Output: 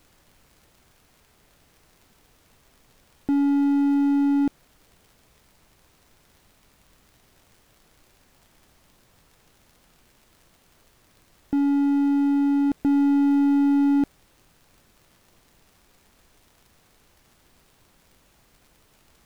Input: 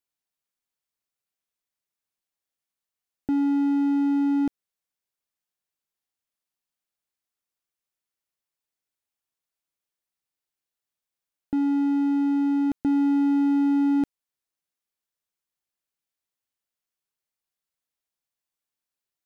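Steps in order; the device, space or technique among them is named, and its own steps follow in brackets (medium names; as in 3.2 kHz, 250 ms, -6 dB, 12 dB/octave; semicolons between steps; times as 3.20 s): record under a worn stylus (tracing distortion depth 0.12 ms; crackle; pink noise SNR 33 dB); trim +2 dB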